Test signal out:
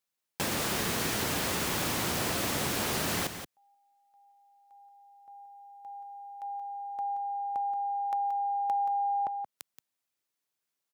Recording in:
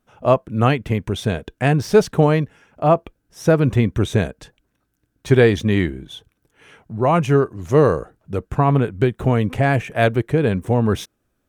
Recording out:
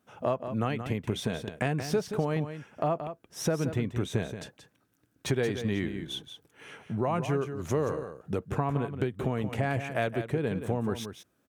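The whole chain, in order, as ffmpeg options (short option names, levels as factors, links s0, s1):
-af "highpass=110,acompressor=threshold=0.0398:ratio=4,aecho=1:1:177:0.335"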